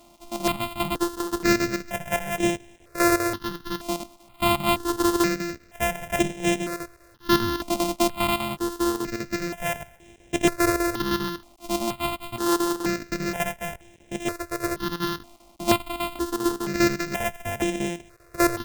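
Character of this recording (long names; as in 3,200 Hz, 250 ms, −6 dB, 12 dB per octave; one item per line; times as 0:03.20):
a buzz of ramps at a fixed pitch in blocks of 128 samples
chopped level 5 Hz, depth 65%, duty 80%
a quantiser's noise floor 10 bits, dither none
notches that jump at a steady rate 2.1 Hz 440–4,500 Hz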